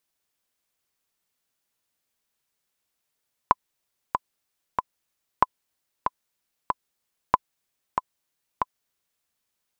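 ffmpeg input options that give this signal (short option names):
-f lavfi -i "aevalsrc='pow(10,(-2.5-6.5*gte(mod(t,3*60/94),60/94))/20)*sin(2*PI*1010*mod(t,60/94))*exp(-6.91*mod(t,60/94)/0.03)':d=5.74:s=44100"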